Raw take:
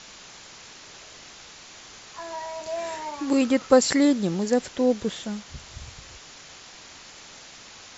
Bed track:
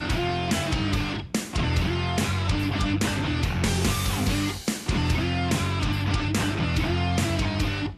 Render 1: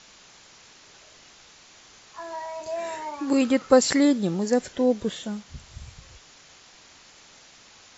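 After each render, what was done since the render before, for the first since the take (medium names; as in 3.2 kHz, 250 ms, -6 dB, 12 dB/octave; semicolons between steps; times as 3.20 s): noise print and reduce 6 dB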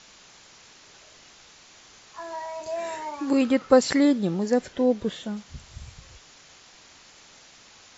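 3.31–5.37 s: distance through air 74 m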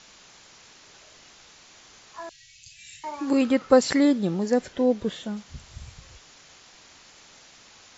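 2.29–3.04 s: elliptic band-stop 130–2600 Hz, stop band 50 dB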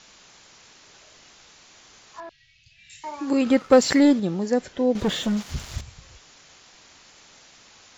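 2.20–2.90 s: distance through air 250 m; 3.46–4.20 s: waveshaping leveller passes 1; 4.95–5.81 s: waveshaping leveller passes 3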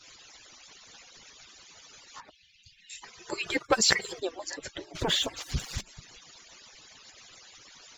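harmonic-percussive separation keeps percussive; peaking EQ 4.4 kHz +4.5 dB 2.7 oct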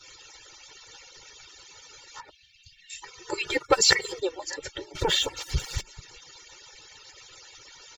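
comb 2.2 ms, depth 99%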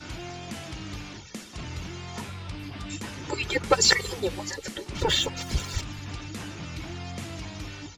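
add bed track -12.5 dB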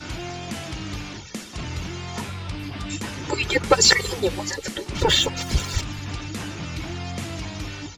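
trim +5.5 dB; peak limiter -3 dBFS, peak gain reduction 2.5 dB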